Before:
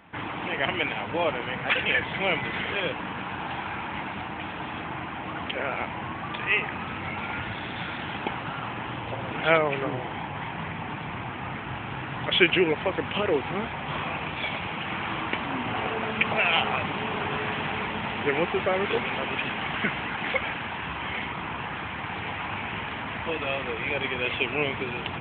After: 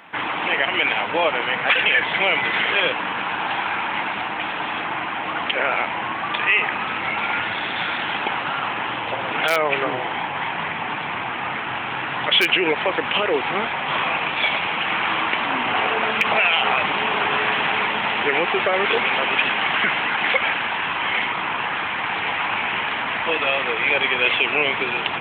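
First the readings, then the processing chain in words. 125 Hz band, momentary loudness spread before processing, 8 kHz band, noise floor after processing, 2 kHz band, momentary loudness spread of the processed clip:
-4.0 dB, 11 LU, n/a, -27 dBFS, +9.0 dB, 8 LU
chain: in parallel at -9 dB: wrapped overs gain 8 dB; on the sum: limiter -14 dBFS, peak gain reduction 9 dB; HPF 720 Hz 6 dB/oct; gain +8.5 dB

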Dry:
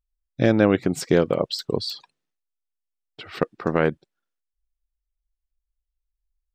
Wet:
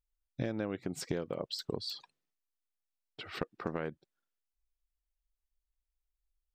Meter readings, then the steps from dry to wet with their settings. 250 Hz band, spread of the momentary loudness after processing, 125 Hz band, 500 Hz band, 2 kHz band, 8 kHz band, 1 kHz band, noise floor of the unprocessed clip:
-16.5 dB, 9 LU, -15.0 dB, -17.0 dB, -16.0 dB, -10.5 dB, -15.0 dB, -83 dBFS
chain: compressor 6:1, threshold -27 dBFS, peak gain reduction 14.5 dB; gain -5.5 dB

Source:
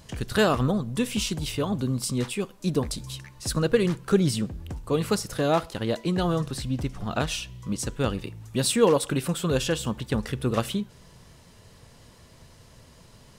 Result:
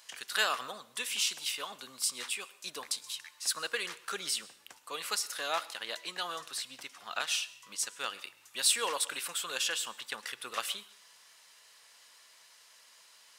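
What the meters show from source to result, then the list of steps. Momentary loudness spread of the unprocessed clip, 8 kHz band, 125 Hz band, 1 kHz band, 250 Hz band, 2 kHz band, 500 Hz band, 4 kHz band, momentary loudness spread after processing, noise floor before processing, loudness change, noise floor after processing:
10 LU, 0.0 dB, under -35 dB, -6.5 dB, -30.0 dB, -1.5 dB, -18.0 dB, 0.0 dB, 11 LU, -53 dBFS, -7.5 dB, -60 dBFS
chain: HPF 1400 Hz 12 dB/oct; plate-style reverb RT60 0.57 s, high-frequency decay 0.9×, pre-delay 95 ms, DRR 19.5 dB

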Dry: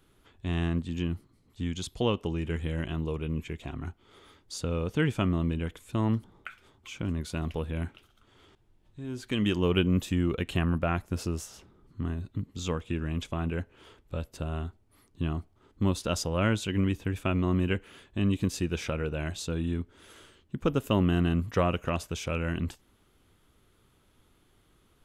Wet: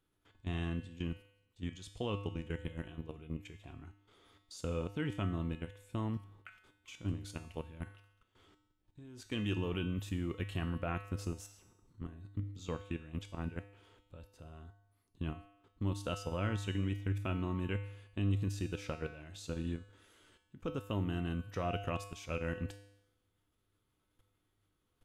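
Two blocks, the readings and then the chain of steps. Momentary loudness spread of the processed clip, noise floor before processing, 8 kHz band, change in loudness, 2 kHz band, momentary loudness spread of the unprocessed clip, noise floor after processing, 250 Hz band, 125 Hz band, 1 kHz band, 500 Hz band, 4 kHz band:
17 LU, -66 dBFS, -11.5 dB, -9.0 dB, -9.0 dB, 12 LU, -80 dBFS, -10.0 dB, -8.0 dB, -8.5 dB, -10.0 dB, -10.0 dB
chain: level quantiser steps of 15 dB; resonator 100 Hz, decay 0.82 s, harmonics odd, mix 80%; gain +7 dB

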